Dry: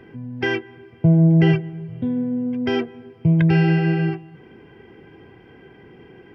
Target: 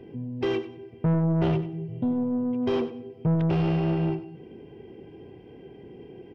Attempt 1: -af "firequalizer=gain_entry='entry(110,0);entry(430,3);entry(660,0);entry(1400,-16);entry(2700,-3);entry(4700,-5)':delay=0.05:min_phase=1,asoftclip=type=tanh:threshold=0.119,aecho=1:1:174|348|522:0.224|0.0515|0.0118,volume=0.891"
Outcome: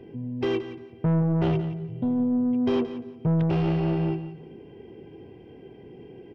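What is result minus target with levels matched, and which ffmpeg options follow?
echo 79 ms late
-af "firequalizer=gain_entry='entry(110,0);entry(430,3);entry(660,0);entry(1400,-16);entry(2700,-3);entry(4700,-5)':delay=0.05:min_phase=1,asoftclip=type=tanh:threshold=0.119,aecho=1:1:95|190|285:0.224|0.0515|0.0118,volume=0.891"

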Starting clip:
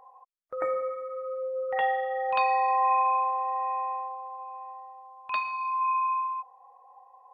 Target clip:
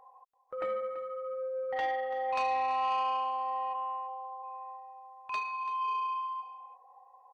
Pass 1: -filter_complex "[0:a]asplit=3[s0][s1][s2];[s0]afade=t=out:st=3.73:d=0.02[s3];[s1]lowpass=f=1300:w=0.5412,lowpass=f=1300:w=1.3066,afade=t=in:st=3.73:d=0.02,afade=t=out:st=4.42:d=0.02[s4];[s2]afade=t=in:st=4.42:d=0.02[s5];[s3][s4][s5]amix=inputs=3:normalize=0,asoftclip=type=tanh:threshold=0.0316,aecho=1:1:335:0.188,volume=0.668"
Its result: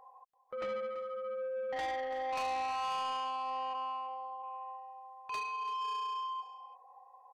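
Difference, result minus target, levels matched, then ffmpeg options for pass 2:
saturation: distortion +7 dB
-filter_complex "[0:a]asplit=3[s0][s1][s2];[s0]afade=t=out:st=3.73:d=0.02[s3];[s1]lowpass=f=1300:w=0.5412,lowpass=f=1300:w=1.3066,afade=t=in:st=3.73:d=0.02,afade=t=out:st=4.42:d=0.02[s4];[s2]afade=t=in:st=4.42:d=0.02[s5];[s3][s4][s5]amix=inputs=3:normalize=0,asoftclip=type=tanh:threshold=0.0794,aecho=1:1:335:0.188,volume=0.668"

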